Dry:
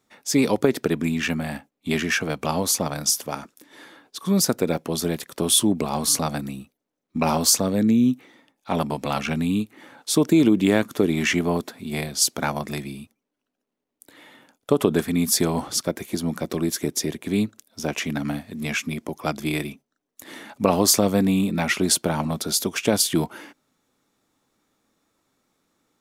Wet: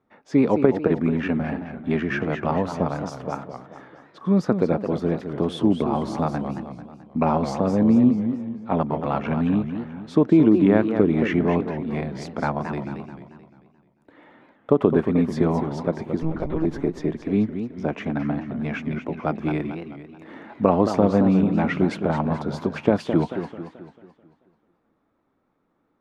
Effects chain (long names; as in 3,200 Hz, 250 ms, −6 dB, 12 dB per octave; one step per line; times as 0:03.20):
low-pass filter 1,400 Hz 12 dB per octave
0:16.22–0:16.65: one-pitch LPC vocoder at 8 kHz 160 Hz
feedback echo with a swinging delay time 219 ms, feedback 46%, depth 216 cents, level −8.5 dB
level +1.5 dB